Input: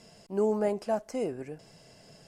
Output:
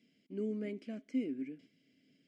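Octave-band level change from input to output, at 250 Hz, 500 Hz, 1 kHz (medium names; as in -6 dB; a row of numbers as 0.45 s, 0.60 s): -2.5 dB, -14.0 dB, under -25 dB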